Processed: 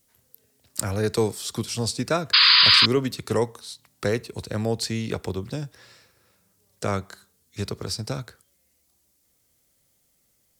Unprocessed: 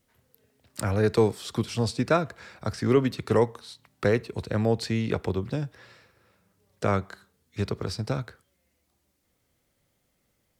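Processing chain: painted sound noise, 2.33–2.86 s, 960–5000 Hz -18 dBFS; tone controls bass 0 dB, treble +12 dB; trim -1.5 dB

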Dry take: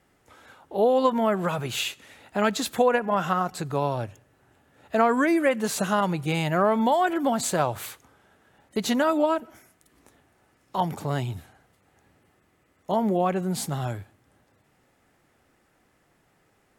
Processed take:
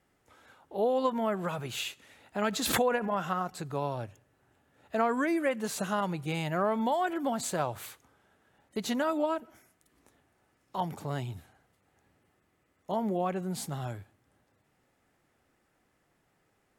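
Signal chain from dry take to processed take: 2.42–3.13 s: swell ahead of each attack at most 37 dB/s; trim -7 dB

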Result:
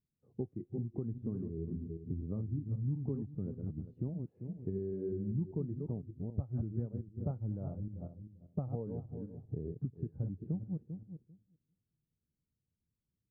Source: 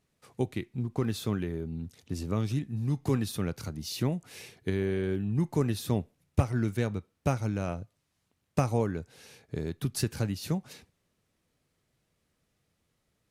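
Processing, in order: backward echo that repeats 197 ms, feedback 40%, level -6 dB; compression 4:1, threshold -43 dBFS, peak gain reduction 21 dB; Bessel low-pass 3.9 kHz; level-controlled noise filter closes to 380 Hz, open at -25.5 dBFS; spectral contrast expander 1.5:1; trim +5.5 dB

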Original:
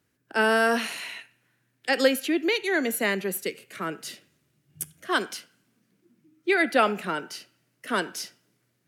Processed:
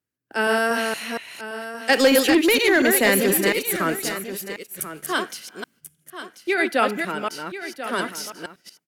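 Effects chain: chunks repeated in reverse 235 ms, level -4 dB; gate -50 dBFS, range -15 dB; treble shelf 9.9 kHz +6 dB; 1.89–4.09 s: waveshaping leveller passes 2; delay 1038 ms -12 dB

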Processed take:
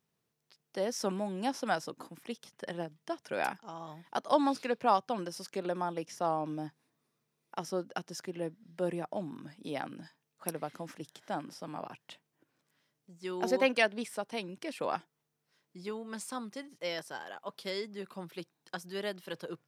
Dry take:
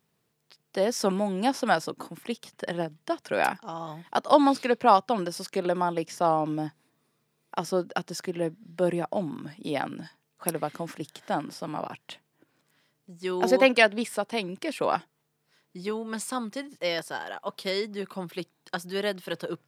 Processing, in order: peaking EQ 5.9 kHz +3.5 dB 0.23 oct; trim -8 dB

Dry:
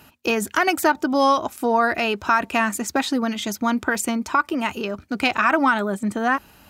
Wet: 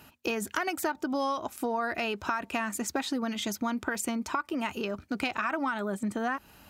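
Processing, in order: compression 4:1, threshold -24 dBFS, peak gain reduction 9.5 dB; trim -4 dB

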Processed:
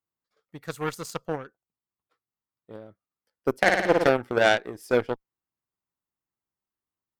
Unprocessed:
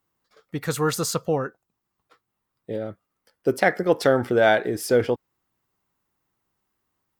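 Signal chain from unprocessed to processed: Chebyshev shaper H 3 -22 dB, 5 -35 dB, 7 -20 dB, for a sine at -4 dBFS; 3.57–4.11 s: flutter echo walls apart 9.6 m, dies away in 0.99 s

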